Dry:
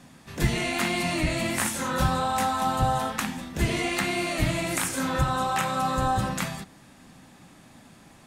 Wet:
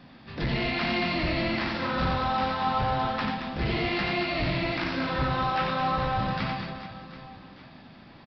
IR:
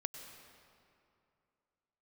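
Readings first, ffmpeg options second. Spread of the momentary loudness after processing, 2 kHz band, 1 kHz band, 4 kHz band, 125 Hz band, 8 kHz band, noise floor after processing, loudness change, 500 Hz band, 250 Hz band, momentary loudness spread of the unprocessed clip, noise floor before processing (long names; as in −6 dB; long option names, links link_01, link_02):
13 LU, −0.5 dB, −1.0 dB, 0.0 dB, −2.0 dB, below −25 dB, −50 dBFS, −1.5 dB, −0.5 dB, −1.0 dB, 5 LU, −53 dBFS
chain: -af "aresample=11025,asoftclip=type=tanh:threshold=-23.5dB,aresample=44100,aecho=1:1:90|225|427.5|731.2|1187:0.631|0.398|0.251|0.158|0.1"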